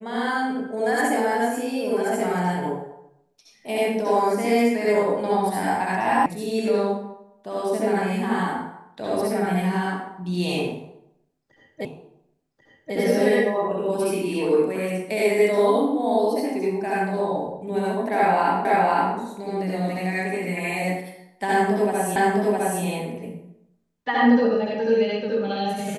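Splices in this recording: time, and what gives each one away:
0:06.26: cut off before it has died away
0:11.85: the same again, the last 1.09 s
0:18.65: the same again, the last 0.51 s
0:22.16: the same again, the last 0.66 s

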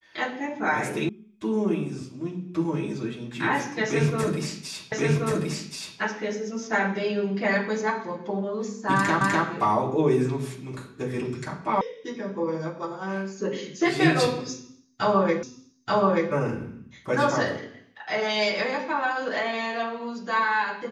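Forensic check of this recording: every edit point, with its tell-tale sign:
0:01.09: cut off before it has died away
0:04.92: the same again, the last 1.08 s
0:09.21: the same again, the last 0.25 s
0:11.81: cut off before it has died away
0:15.43: the same again, the last 0.88 s

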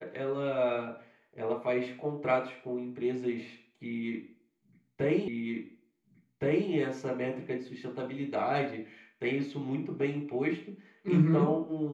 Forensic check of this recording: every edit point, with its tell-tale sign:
0:05.28: the same again, the last 1.42 s

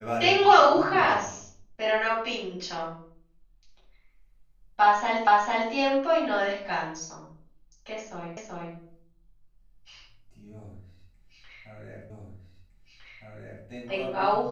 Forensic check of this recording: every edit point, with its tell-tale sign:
0:05.27: the same again, the last 0.45 s
0:08.37: the same again, the last 0.38 s
0:12.10: the same again, the last 1.56 s

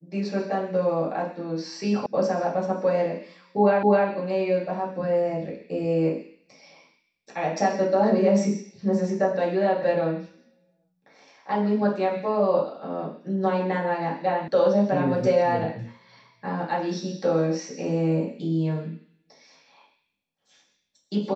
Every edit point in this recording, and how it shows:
0:02.06: cut off before it has died away
0:03.83: the same again, the last 0.26 s
0:14.48: cut off before it has died away

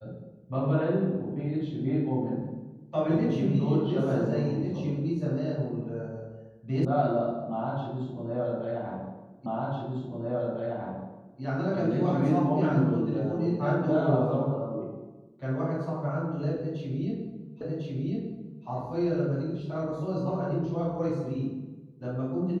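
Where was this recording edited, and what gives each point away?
0:06.85: cut off before it has died away
0:09.46: the same again, the last 1.95 s
0:17.61: the same again, the last 1.05 s

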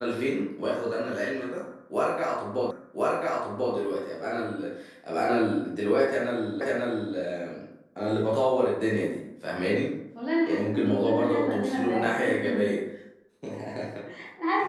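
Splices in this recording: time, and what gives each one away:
0:02.71: the same again, the last 1.04 s
0:06.61: the same again, the last 0.54 s

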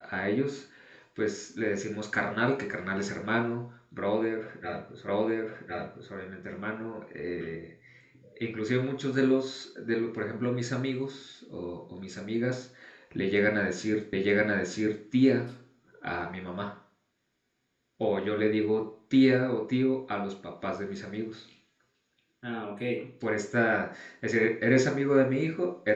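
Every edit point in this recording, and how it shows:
0:05.08: the same again, the last 1.06 s
0:14.13: the same again, the last 0.93 s

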